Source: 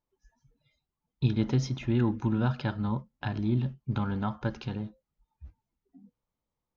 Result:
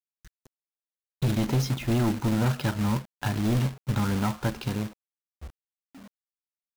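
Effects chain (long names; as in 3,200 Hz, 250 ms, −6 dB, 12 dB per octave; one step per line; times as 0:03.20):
hard clipping −26.5 dBFS, distortion −9 dB
log-companded quantiser 4 bits
level +4.5 dB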